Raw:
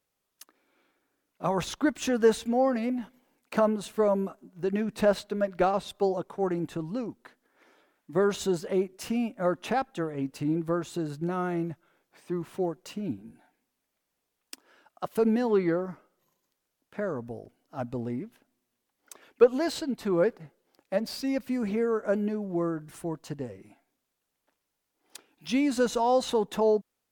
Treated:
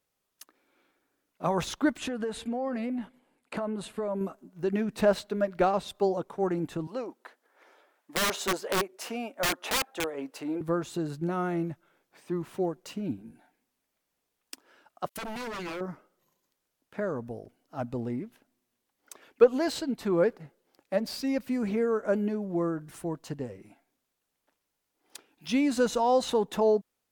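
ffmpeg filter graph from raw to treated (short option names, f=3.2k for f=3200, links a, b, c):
-filter_complex "[0:a]asettb=1/sr,asplit=3[a][b][c];[a]atrim=end=1.984[d];[b]atrim=start=1.98:end=4.21,asetpts=PTS-STARTPTS,afade=t=in:d=0.004:c=qsin,afade=t=out:st=2.226:d=0.004:c=qsin,lowpass=f=11k:w=0.5412,lowpass=f=11k:w=1.3066,equalizer=f=5.9k:t=o:w=0.53:g=-9.5,acompressor=threshold=-28dB:ratio=10:attack=3.2:release=140:knee=1:detection=peak[e];[c]atrim=start=4.206[f];[d][e]acrossfade=d=0.004:c1=hsin:c2=qsin[g];[g][f]acrossfade=d=0.004:c1=qsin:c2=hsin,asettb=1/sr,asplit=3[h][i][j];[h]atrim=end=6.874[k];[i]atrim=start=6.87:end=10.61,asetpts=PTS-STARTPTS,afade=t=in:d=0.004:c=qsin,afade=t=out:st=3.736:d=0.004:c=qsin,highpass=460,equalizer=f=610:t=o:w=2.6:g=5,aeval=exprs='(mod(11.9*val(0)+1,2)-1)/11.9':c=same[l];[j]atrim=start=10.606[m];[k][l]acrossfade=d=0.004:c1=hsin:c2=qsin[n];[n][m]acrossfade=d=0.004:c1=qsin:c2=hsin,asettb=1/sr,asplit=3[o][p][q];[o]atrim=end=15.094[r];[p]atrim=start=15.09:end=15.81,asetpts=PTS-STARTPTS,afade=t=in:d=0.004:c=qsin,afade=t=out:st=0.716:d=0.004:c=qsin,agate=range=-30dB:threshold=-51dB:ratio=16:release=100:detection=peak,tiltshelf=f=1.5k:g=-6,aeval=exprs='0.0266*(abs(mod(val(0)/0.0266+3,4)-2)-1)':c=same[s];[q]atrim=start=15.806[t];[r][s]acrossfade=d=0.004:c1=hsin:c2=qsin[u];[u][t]acrossfade=d=0.004:c1=qsin:c2=hsin"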